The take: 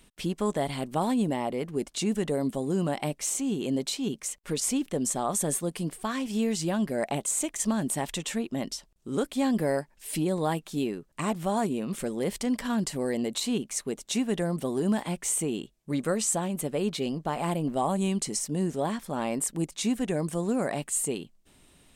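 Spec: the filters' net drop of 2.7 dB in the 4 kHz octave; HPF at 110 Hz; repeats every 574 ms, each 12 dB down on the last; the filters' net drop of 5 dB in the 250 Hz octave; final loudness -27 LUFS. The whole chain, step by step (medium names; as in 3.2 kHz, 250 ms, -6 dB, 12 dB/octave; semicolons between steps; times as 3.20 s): high-pass 110 Hz; peaking EQ 250 Hz -6 dB; peaking EQ 4 kHz -3.5 dB; feedback delay 574 ms, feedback 25%, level -12 dB; trim +4.5 dB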